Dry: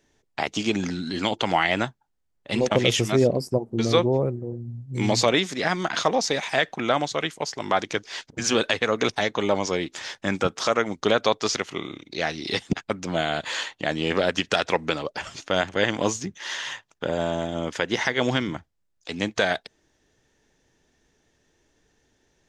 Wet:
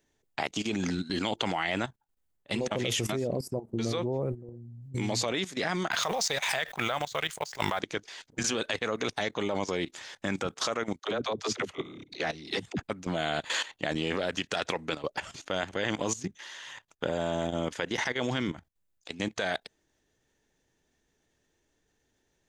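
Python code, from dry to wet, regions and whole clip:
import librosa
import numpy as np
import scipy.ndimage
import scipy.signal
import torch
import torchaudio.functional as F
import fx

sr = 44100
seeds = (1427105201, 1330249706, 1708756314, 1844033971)

y = fx.chain(x, sr, fx.law_mismatch(coded='A'),
    fx.peak_eq(hz=280.0, db=-13.0, octaves=1.2),
    fx.pre_swell(db_per_s=58.0), at=(5.91, 7.8))
y = fx.chain(y, sr, fx.high_shelf(hz=3300.0, db=-3.5),
    fx.dispersion(late='lows', ms=68.0, hz=330.0), at=(10.99, 12.83))
y = fx.peak_eq(y, sr, hz=5400.0, db=-3.5, octaves=0.29)
y = fx.level_steps(y, sr, step_db=15)
y = fx.high_shelf(y, sr, hz=10000.0, db=9.0)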